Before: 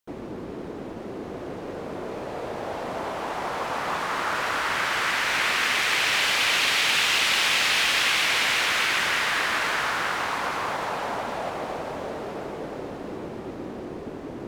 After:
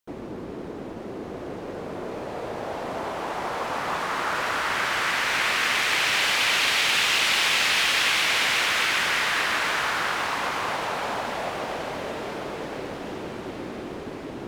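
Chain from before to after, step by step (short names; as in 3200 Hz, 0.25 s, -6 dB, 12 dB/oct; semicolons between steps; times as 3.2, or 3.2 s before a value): diffused feedback echo 1.328 s, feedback 54%, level -14 dB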